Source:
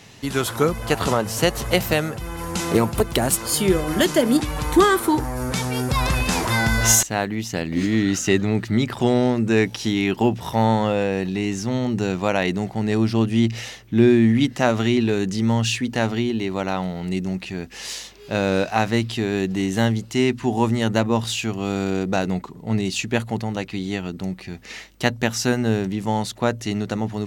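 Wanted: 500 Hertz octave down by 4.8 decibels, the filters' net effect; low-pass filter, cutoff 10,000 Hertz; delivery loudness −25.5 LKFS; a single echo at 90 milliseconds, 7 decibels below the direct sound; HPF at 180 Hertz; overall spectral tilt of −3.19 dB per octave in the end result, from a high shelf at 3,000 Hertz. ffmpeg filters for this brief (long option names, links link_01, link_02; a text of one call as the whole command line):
ffmpeg -i in.wav -af "highpass=180,lowpass=10000,equalizer=frequency=500:width_type=o:gain=-6.5,highshelf=frequency=3000:gain=3.5,aecho=1:1:90:0.447,volume=-3dB" out.wav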